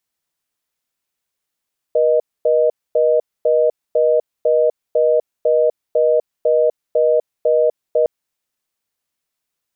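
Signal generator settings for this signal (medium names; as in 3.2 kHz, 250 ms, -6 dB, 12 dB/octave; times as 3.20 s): call progress tone reorder tone, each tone -14 dBFS 6.11 s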